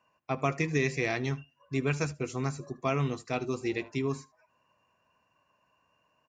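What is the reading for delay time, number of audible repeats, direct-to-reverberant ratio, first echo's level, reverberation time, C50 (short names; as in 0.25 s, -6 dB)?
76 ms, 1, none, -22.0 dB, none, none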